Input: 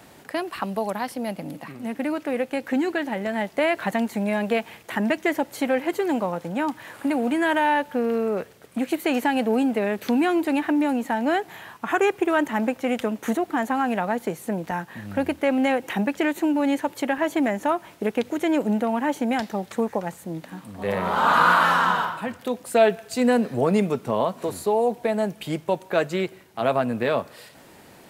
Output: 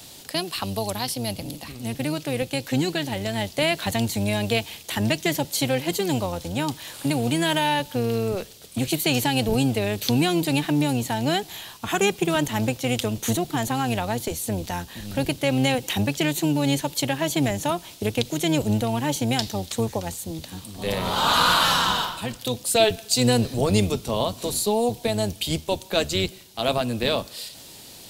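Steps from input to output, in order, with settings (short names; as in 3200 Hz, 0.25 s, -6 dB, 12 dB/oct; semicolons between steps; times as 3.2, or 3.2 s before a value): octaver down 1 oct, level -1 dB; resonant high shelf 2600 Hz +13 dB, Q 1.5; gain -1.5 dB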